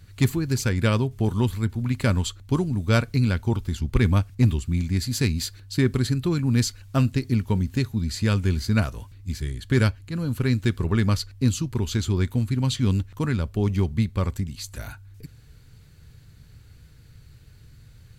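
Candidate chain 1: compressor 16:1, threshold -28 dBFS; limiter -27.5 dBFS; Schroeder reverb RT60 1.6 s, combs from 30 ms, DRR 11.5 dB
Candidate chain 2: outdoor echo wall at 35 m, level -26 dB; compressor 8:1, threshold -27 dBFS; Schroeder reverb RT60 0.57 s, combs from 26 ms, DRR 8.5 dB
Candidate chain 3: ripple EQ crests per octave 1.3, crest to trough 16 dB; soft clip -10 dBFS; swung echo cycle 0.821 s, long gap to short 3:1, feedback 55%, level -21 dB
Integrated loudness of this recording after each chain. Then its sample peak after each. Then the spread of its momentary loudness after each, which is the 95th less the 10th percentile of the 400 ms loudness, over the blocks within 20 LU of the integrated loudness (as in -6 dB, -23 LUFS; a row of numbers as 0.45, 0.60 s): -37.5, -32.5, -22.5 LUFS; -25.0, -16.0, -10.0 dBFS; 15, 19, 8 LU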